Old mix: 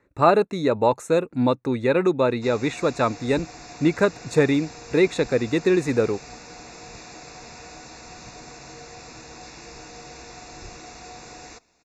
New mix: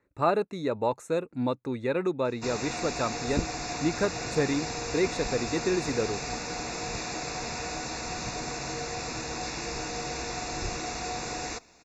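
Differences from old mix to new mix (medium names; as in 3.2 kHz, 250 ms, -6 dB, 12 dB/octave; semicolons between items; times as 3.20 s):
speech -8.0 dB; background +7.5 dB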